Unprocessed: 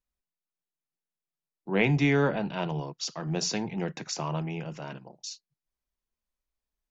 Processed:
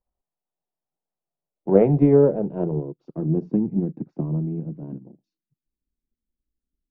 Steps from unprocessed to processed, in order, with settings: low-pass sweep 760 Hz -> 280 Hz, 1.13–3.63 s; transient shaper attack +6 dB, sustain -3 dB; trim +4 dB

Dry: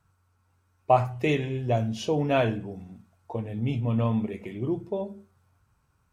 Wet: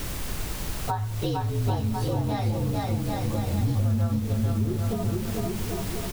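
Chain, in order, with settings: frequency axis rescaled in octaves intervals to 118%; on a send: bouncing-ball echo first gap 450 ms, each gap 0.75×, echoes 5; on the sum: added noise pink -43 dBFS; in parallel at -5.5 dB: word length cut 6-bit, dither triangular; on the sum: compression 6:1, threshold -30 dBFS, peak gain reduction 17 dB; bass shelf 190 Hz +11 dB; trim +1.5 dB

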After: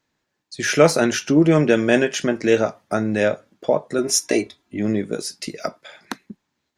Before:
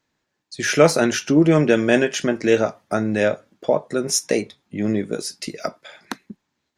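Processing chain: 3.98–4.79 s: comb 3 ms, depth 70%

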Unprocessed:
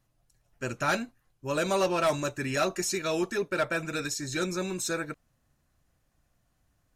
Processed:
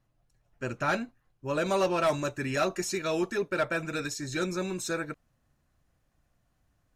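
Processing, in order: treble shelf 4.5 kHz -11 dB, from 1.66 s -5.5 dB

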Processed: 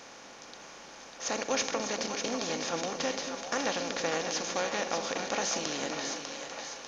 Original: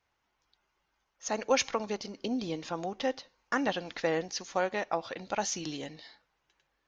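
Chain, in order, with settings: spectral levelling over time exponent 0.4; treble shelf 4.1 kHz +8 dB; on a send: two-band feedback delay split 560 Hz, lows 238 ms, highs 597 ms, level -6 dB; on the sum: trim -8 dB

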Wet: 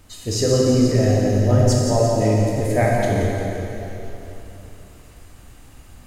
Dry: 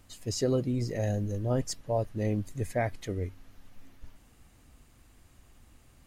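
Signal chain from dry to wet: two-band feedback delay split 370 Hz, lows 127 ms, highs 173 ms, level -9 dB; plate-style reverb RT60 3.2 s, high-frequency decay 0.85×, DRR -3.5 dB; trim +7.5 dB

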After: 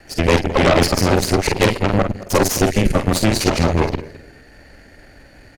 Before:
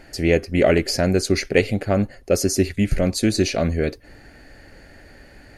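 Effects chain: time reversed locally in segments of 92 ms; doubling 47 ms -5.5 dB; harmony voices +4 st -15 dB; on a send: feedback delay 214 ms, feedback 26%, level -15.5 dB; on the sum: Chebyshev shaper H 8 -12 dB, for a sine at -2 dBFS

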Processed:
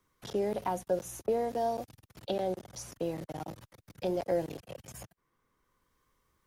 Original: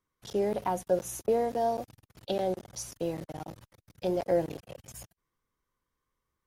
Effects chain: three bands compressed up and down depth 40%; trim -2.5 dB

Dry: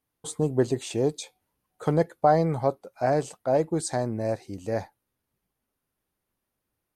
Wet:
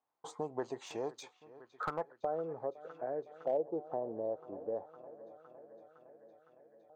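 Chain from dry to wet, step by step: low-pass sweep 6.5 kHz -> 460 Hz, 1.38–2.24 s; on a send: feedback echo behind a low-pass 510 ms, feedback 77%, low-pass 3.8 kHz, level -21.5 dB; on the sum: LFO band-pass saw up 0.29 Hz 830–1800 Hz; compression 2:1, threshold -42 dBFS, peak gain reduction 10.5 dB; slew-rate limiter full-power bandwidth 20 Hz; trim +4.5 dB

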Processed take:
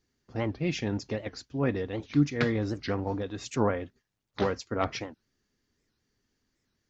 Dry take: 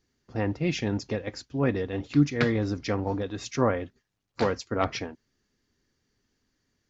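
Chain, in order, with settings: warped record 78 rpm, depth 250 cents; trim -2.5 dB

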